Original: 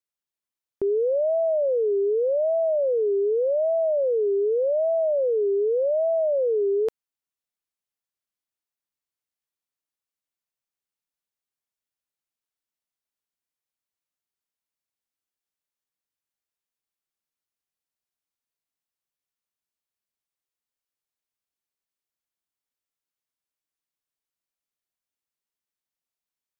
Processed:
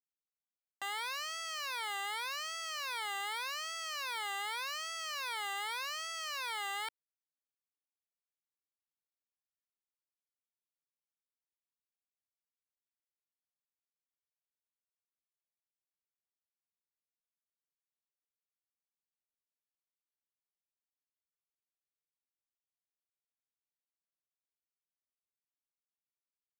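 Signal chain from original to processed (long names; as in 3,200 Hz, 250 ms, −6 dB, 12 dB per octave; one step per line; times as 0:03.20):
wavefolder on the positive side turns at −31 dBFS
automatic gain control gain up to 8 dB
soft clipping −25.5 dBFS, distortion −7 dB
leveller curve on the samples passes 2
high-frequency loss of the air 480 metres
leveller curve on the samples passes 5
high-pass filter 470 Hz 12 dB per octave
level −8.5 dB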